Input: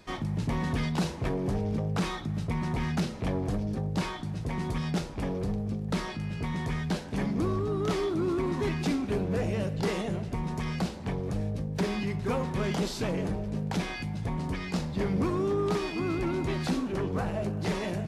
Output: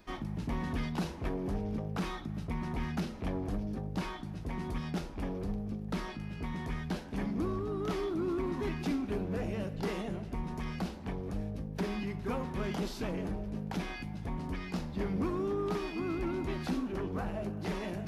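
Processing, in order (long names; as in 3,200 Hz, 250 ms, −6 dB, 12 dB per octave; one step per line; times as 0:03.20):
reversed playback
upward compression, threshold −33 dBFS
reversed playback
octave-band graphic EQ 125/500/1,000/2,000/4,000/8,000 Hz −11/−6/−3/−4/−5/−10 dB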